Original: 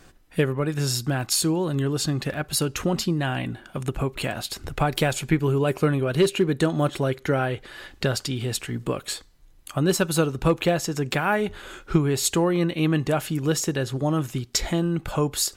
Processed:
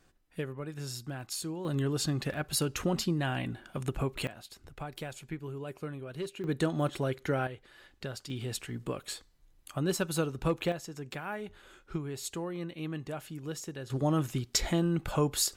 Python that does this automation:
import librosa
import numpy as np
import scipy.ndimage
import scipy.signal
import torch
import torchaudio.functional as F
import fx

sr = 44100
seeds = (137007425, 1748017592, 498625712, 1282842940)

y = fx.gain(x, sr, db=fx.steps((0.0, -14.5), (1.65, -6.0), (4.27, -18.0), (6.44, -7.5), (7.47, -15.5), (8.3, -9.0), (10.72, -15.5), (13.9, -4.5)))